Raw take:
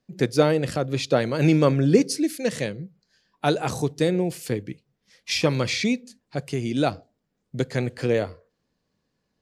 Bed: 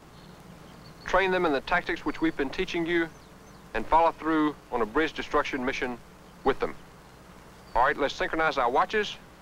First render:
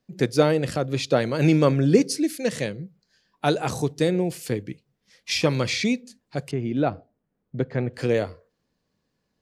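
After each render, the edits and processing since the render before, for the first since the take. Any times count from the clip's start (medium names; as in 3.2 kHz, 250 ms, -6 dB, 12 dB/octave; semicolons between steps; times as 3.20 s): 6.51–7.94 s: Bessel low-pass 1.6 kHz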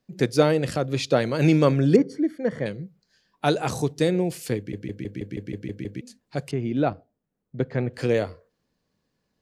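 1.96–2.66 s: Savitzky-Golay filter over 41 samples; 4.57 s: stutter in place 0.16 s, 9 plays; 6.93–7.60 s: gain -4.5 dB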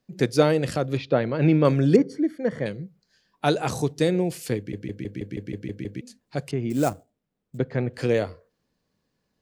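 0.97–1.65 s: distance through air 320 m; 6.70–7.58 s: sample-rate reducer 7.9 kHz, jitter 20%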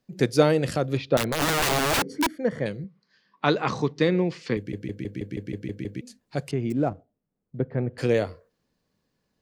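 1.17–2.30 s: integer overflow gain 18 dB; 2.84–4.57 s: cabinet simulation 130–5100 Hz, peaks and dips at 210 Hz +4 dB, 690 Hz -5 dB, 1.1 kHz +10 dB, 2 kHz +6 dB; 6.72–7.98 s: tape spacing loss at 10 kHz 40 dB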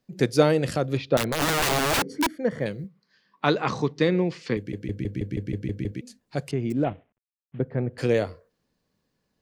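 2.50–3.50 s: short-mantissa float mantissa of 6-bit; 4.88–5.92 s: bass shelf 120 Hz +11 dB; 6.84–7.59 s: CVSD coder 16 kbps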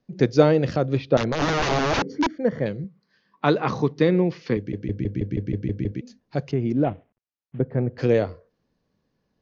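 steep low-pass 6.6 kHz 96 dB/octave; tilt shelf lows +3.5 dB, about 1.5 kHz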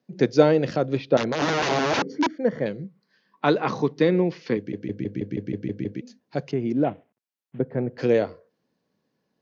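high-pass 170 Hz 12 dB/octave; band-stop 1.2 kHz, Q 18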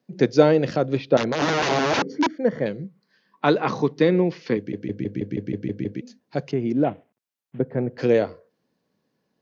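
trim +1.5 dB; peak limiter -1 dBFS, peak gain reduction 1 dB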